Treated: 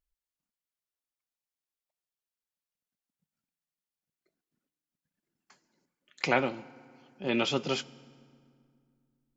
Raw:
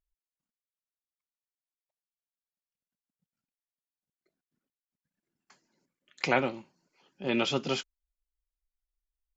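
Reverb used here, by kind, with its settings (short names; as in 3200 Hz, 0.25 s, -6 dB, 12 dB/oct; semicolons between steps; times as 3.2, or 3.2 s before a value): FDN reverb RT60 2.2 s, low-frequency decay 1.45×, high-frequency decay 0.7×, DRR 18.5 dB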